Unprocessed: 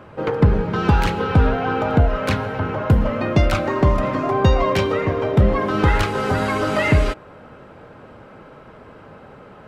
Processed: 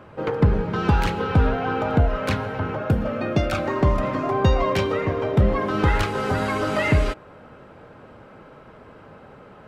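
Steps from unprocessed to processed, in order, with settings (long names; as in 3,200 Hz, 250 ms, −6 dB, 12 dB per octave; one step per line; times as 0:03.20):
0:02.77–0:03.58: notch comb filter 1,000 Hz
level −3 dB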